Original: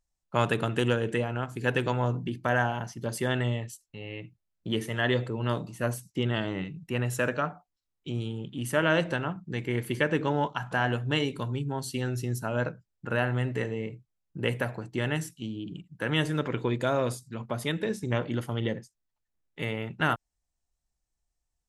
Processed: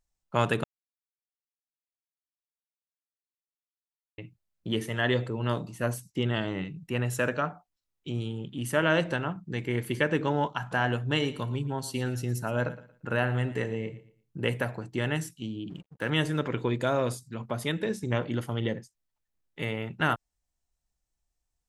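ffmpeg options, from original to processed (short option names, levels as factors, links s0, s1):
-filter_complex "[0:a]asettb=1/sr,asplit=3[s0][s1][s2];[s0]atrim=end=11.044[s3];[s1]atrim=start=11.04:end=14.4,asetpts=PTS-STARTPTS,afade=t=in:d=0.004:c=qsin,afade=t=out:st=3.356:d=0.004:c=qsin,aecho=1:1:115|230|345:0.158|0.0428|0.0116,atrim=end_sample=148176[s4];[s2]atrim=start=14.396[s5];[s3][s4]acrossfade=d=0.004:c1=hsin:c2=qsin[s6];[s6][s5]acrossfade=d=0.004:c1=qsin:c2=hsin,asettb=1/sr,asplit=3[s7][s8][s9];[s7]atrim=end=15.704[s10];[s8]atrim=start=15.7:end=16.1,asetpts=PTS-STARTPTS,afade=t=in:d=0.004:c=qsin,afade=t=out:st=0.396:d=0.004:c=qsin,aeval=exprs='sgn(val(0))*max(abs(val(0))-0.00178,0)':c=same[s11];[s9]atrim=start=16.096[s12];[s10][s11]acrossfade=d=0.004:c1=hsin:c2=qsin[s13];[s13][s12]acrossfade=d=0.004:c1=qsin:c2=hsin,asplit=3[s14][s15][s16];[s14]atrim=end=0.64,asetpts=PTS-STARTPTS,afade=t=out:st=0.636:d=0.004:c=hsin[s17];[s15]atrim=start=0.64:end=4.18,asetpts=PTS-STARTPTS,volume=0[s18];[s16]atrim=start=4.18,asetpts=PTS-STARTPTS,afade=t=in:d=0.004:c=hsin[s19];[s17][s18][s19]concat=n=3:v=0:a=1"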